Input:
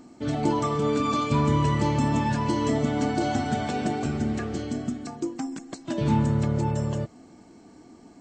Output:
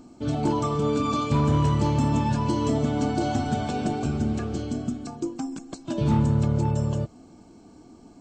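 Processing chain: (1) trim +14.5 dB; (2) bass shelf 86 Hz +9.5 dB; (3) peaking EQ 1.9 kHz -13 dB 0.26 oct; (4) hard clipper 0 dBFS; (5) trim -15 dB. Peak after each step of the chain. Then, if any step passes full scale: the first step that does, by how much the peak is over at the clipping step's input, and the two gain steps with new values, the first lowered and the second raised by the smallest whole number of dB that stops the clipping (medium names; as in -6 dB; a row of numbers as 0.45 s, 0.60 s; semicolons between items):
+3.5 dBFS, +4.5 dBFS, +4.5 dBFS, 0.0 dBFS, -15.0 dBFS; step 1, 4.5 dB; step 1 +9.5 dB, step 5 -10 dB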